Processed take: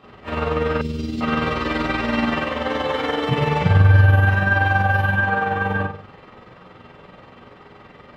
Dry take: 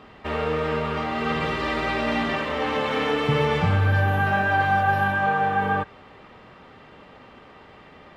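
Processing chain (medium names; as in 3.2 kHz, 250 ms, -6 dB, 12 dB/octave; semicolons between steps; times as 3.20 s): 2.60–3.29 s: band-stop 2.5 kHz, Q 7; reverberation RT60 0.45 s, pre-delay 12 ms, DRR -7.5 dB; AM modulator 21 Hz, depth 30%; 0.81–1.21 s: FFT filter 390 Hz 0 dB, 710 Hz -24 dB, 1.3 kHz -25 dB, 5.3 kHz +6 dB; trim -4 dB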